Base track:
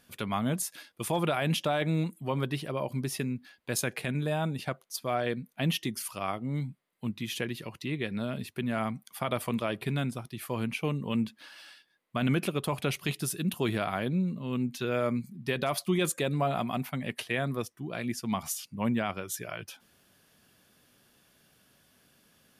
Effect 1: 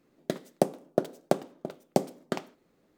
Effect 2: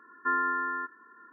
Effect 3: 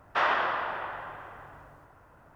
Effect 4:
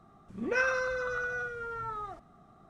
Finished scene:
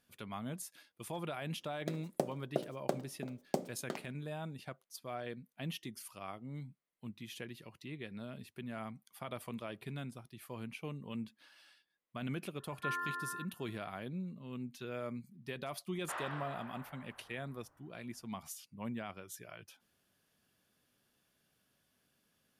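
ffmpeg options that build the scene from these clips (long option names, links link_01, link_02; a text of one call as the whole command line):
ffmpeg -i bed.wav -i cue0.wav -i cue1.wav -i cue2.wav -filter_complex "[0:a]volume=-12.5dB[link_01];[1:a]bandreject=frequency=60:width_type=h:width=6,bandreject=frequency=120:width_type=h:width=6,bandreject=frequency=180:width_type=h:width=6,bandreject=frequency=240:width_type=h:width=6,bandreject=frequency=300:width_type=h:width=6,bandreject=frequency=360:width_type=h:width=6,bandreject=frequency=420:width_type=h:width=6,bandreject=frequency=480:width_type=h:width=6,bandreject=frequency=540:width_type=h:width=6,bandreject=frequency=600:width_type=h:width=6[link_02];[2:a]highpass=340[link_03];[link_02]atrim=end=2.97,asetpts=PTS-STARTPTS,volume=-9dB,afade=type=in:duration=0.004:curve=hsin,afade=type=out:start_time=2.966:duration=0.004:curve=hsin,adelay=1580[link_04];[link_03]atrim=end=1.32,asetpts=PTS-STARTPTS,volume=-10.5dB,afade=type=in:duration=0.004:curve=hsin,afade=type=out:start_time=1.316:duration=0.004:curve=hsin,adelay=12580[link_05];[3:a]atrim=end=2.35,asetpts=PTS-STARTPTS,volume=-17dB,afade=type=in:duration=0.004:curve=hsin,afade=type=out:start_time=2.346:duration=0.004:curve=hsin,adelay=15930[link_06];[link_01][link_04][link_05][link_06]amix=inputs=4:normalize=0" out.wav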